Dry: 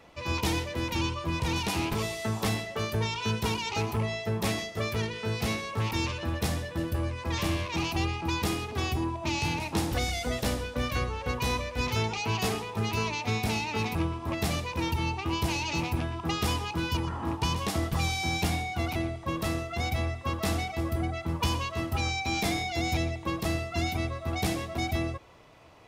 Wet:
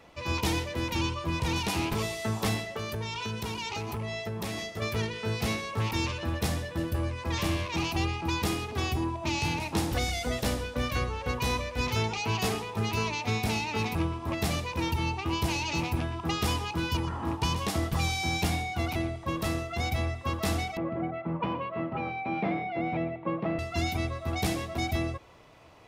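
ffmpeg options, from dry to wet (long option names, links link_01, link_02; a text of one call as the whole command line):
ffmpeg -i in.wav -filter_complex "[0:a]asettb=1/sr,asplit=3[link_01][link_02][link_03];[link_01]atrim=end=2.764[link_04];[link_02]atrim=start=2.76:end=4.82,asetpts=PTS-STARTPTS,afade=type=in:duration=0.004:curve=qsin,afade=type=out:start_time=2.056:duration=0.004:curve=qsin,acompressor=threshold=-30dB:ratio=6:attack=3.2:release=140:knee=1:detection=peak[link_05];[link_03]atrim=start=4.816[link_06];[link_04][link_05]acrossfade=duration=0.004:curve1=hsin:curve2=qsin[link_07];[link_07][link_06]acrossfade=duration=0.004:curve1=qsin:curve2=hsin,asettb=1/sr,asplit=3[link_08][link_09][link_10];[link_08]atrim=end=20.774[link_11];[link_09]atrim=start=20.77:end=23.59,asetpts=PTS-STARTPTS,afade=type=in:duration=0.004:curve=qsin,afade=type=out:start_time=2.816:duration=0.004:curve=qsin,highpass=frequency=140:width=0.5412,highpass=frequency=140:width=1.3066,equalizer=frequency=170:width_type=q:width=4:gain=5,equalizer=frequency=560:width_type=q:width=4:gain=6,equalizer=frequency=1700:width_type=q:width=4:gain=-5,lowpass=frequency=2200:width=0.5412,lowpass=frequency=2200:width=1.3066[link_12];[link_10]atrim=start=23.586[link_13];[link_11][link_12]acrossfade=duration=0.004:curve1=hsin:curve2=qsin[link_14];[link_14][link_13]acrossfade=duration=0.004:curve1=qsin:curve2=hsin" out.wav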